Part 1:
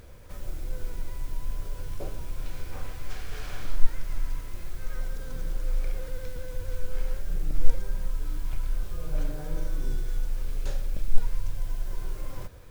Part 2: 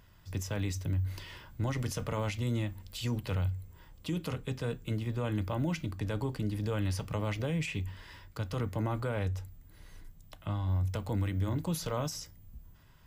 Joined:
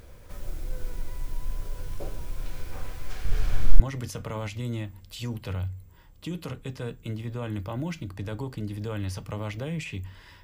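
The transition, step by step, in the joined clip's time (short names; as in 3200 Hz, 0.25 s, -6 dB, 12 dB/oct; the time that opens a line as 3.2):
part 1
3.25–3.8 low shelf 230 Hz +11.5 dB
3.8 switch to part 2 from 1.62 s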